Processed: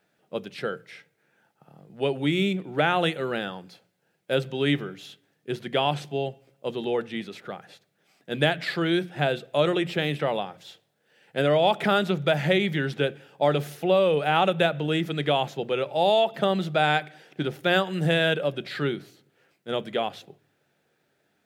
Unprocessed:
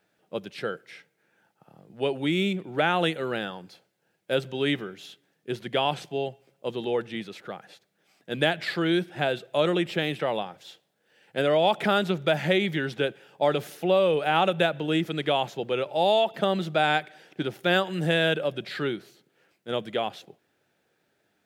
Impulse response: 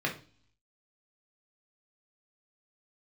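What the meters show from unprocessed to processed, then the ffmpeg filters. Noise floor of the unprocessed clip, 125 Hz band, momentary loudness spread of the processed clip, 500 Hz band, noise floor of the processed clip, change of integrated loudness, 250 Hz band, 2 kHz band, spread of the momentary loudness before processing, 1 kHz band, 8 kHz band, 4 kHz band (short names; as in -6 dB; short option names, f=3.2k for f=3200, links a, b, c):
-72 dBFS, +3.5 dB, 14 LU, +1.0 dB, -71 dBFS, +1.0 dB, +1.0 dB, +1.0 dB, 14 LU, +1.0 dB, n/a, +0.5 dB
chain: -filter_complex "[0:a]asplit=2[a][b];[1:a]atrim=start_sample=2205,lowshelf=f=220:g=11.5[c];[b][c]afir=irnorm=-1:irlink=0,volume=-23.5dB[d];[a][d]amix=inputs=2:normalize=0"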